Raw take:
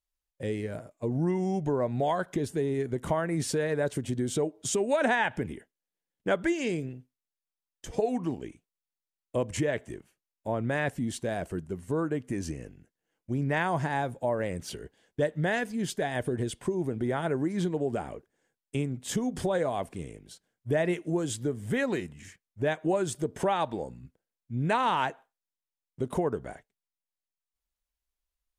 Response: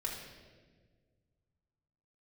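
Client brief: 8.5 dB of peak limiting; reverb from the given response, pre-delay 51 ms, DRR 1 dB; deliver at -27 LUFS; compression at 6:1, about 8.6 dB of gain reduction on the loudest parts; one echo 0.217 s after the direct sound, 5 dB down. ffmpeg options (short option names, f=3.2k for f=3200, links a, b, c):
-filter_complex "[0:a]acompressor=threshold=-31dB:ratio=6,alimiter=level_in=4dB:limit=-24dB:level=0:latency=1,volume=-4dB,aecho=1:1:217:0.562,asplit=2[a][b];[1:a]atrim=start_sample=2205,adelay=51[c];[b][c]afir=irnorm=-1:irlink=0,volume=-2.5dB[d];[a][d]amix=inputs=2:normalize=0,volume=7.5dB"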